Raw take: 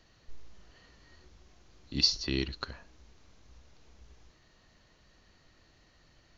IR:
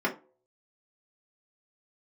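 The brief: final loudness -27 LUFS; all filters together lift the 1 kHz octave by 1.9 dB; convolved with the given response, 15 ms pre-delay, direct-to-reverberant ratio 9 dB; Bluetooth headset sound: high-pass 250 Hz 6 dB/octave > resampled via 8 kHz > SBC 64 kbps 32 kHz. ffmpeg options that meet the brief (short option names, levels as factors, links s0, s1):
-filter_complex "[0:a]equalizer=f=1000:t=o:g=3,asplit=2[s0][s1];[1:a]atrim=start_sample=2205,adelay=15[s2];[s1][s2]afir=irnorm=-1:irlink=0,volume=0.1[s3];[s0][s3]amix=inputs=2:normalize=0,highpass=f=250:p=1,aresample=8000,aresample=44100,volume=3.76" -ar 32000 -c:a sbc -b:a 64k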